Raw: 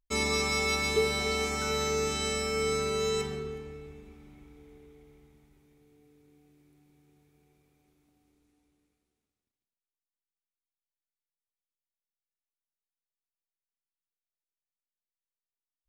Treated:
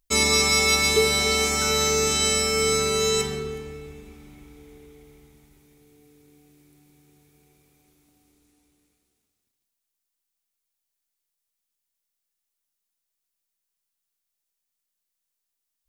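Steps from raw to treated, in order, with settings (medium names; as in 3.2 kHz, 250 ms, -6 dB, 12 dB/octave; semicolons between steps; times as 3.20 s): treble shelf 3.9 kHz +10 dB; trim +5.5 dB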